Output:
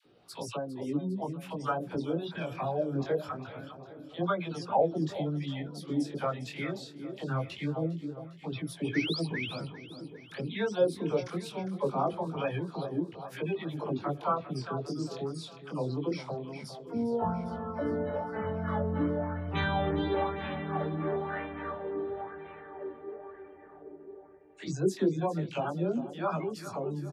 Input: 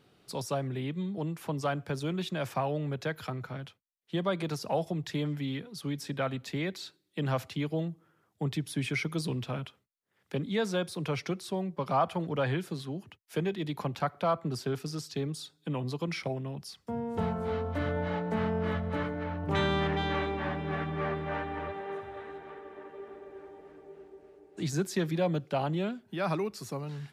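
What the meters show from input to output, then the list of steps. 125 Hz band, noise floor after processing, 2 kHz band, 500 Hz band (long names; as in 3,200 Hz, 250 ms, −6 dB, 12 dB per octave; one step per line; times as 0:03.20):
−2.0 dB, −51 dBFS, −2.0 dB, +1.0 dB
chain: all-pass dispersion lows, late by 59 ms, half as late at 700 Hz
dynamic equaliser 2,100 Hz, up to −6 dB, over −52 dBFS, Q 1.1
gate on every frequency bin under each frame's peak −30 dB strong
chorus effect 0.23 Hz, delay 17 ms, depth 7.3 ms
sound drawn into the spectrogram rise, 0:08.93–0:09.20, 1,600–5,400 Hz −36 dBFS
repeating echo 404 ms, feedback 60%, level −13 dB
auto-filter bell 1 Hz 290–2,700 Hz +12 dB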